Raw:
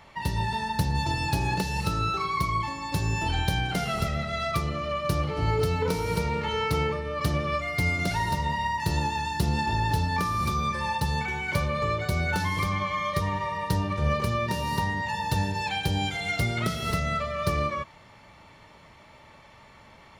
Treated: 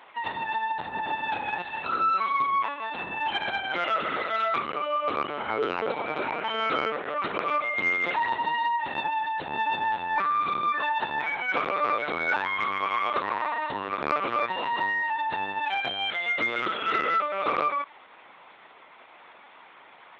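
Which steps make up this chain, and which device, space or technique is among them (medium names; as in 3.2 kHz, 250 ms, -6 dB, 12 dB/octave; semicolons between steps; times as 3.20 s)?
talking toy (LPC vocoder at 8 kHz pitch kept; high-pass 430 Hz 12 dB/octave; peaking EQ 1.4 kHz +4 dB 0.52 oct; saturation -13.5 dBFS, distortion -28 dB); trim +2 dB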